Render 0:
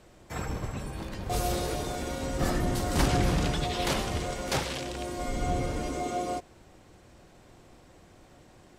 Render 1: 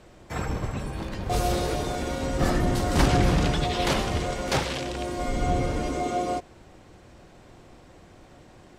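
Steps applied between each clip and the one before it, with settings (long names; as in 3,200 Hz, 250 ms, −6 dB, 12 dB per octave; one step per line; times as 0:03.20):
high-shelf EQ 7,800 Hz −8 dB
level +4.5 dB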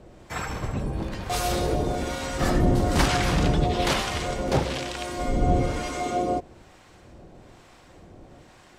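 two-band tremolo in antiphase 1.1 Hz, depth 70%, crossover 810 Hz
level +4.5 dB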